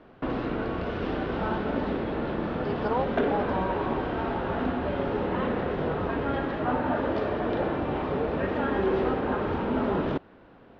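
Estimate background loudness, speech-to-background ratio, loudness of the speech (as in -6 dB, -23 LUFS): -28.5 LUFS, -5.0 dB, -33.5 LUFS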